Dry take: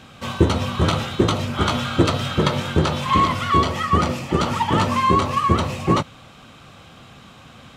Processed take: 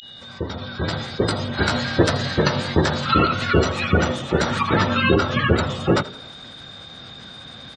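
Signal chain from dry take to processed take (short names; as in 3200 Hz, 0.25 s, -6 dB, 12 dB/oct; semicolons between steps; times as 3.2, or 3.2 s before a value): opening faded in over 1.74 s; spectral gate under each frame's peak -30 dB strong; whine 2900 Hz -38 dBFS; formant shift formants +4 st; on a send: frequency-shifting echo 83 ms, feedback 50%, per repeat +33 Hz, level -19 dB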